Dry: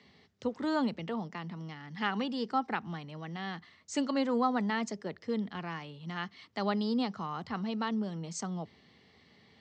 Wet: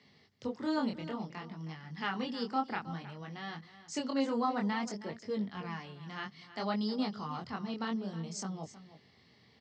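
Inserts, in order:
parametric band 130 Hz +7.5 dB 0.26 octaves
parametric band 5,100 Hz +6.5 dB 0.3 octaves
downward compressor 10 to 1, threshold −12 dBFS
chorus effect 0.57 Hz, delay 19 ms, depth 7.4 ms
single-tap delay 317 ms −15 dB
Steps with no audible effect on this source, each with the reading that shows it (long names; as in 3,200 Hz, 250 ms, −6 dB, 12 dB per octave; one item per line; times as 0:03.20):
downward compressor, threshold −12 dBFS: peak of its input −17.0 dBFS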